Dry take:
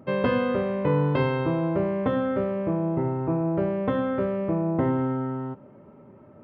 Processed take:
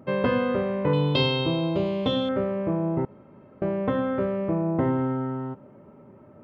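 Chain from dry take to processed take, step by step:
0:00.93–0:02.29: high shelf with overshoot 2,500 Hz +13 dB, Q 3
0:03.05–0:03.62: fill with room tone

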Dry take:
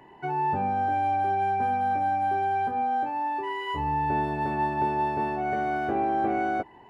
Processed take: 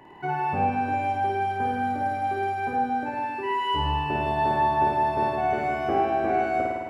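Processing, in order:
flutter between parallel walls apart 9.1 metres, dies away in 1.5 s
level +1.5 dB

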